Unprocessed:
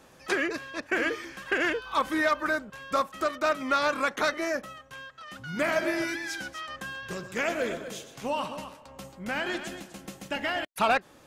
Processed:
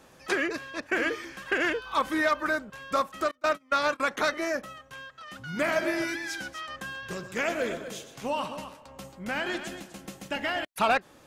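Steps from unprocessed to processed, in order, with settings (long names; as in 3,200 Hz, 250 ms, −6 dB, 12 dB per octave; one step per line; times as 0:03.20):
0:03.31–0:04.00: noise gate −26 dBFS, range −28 dB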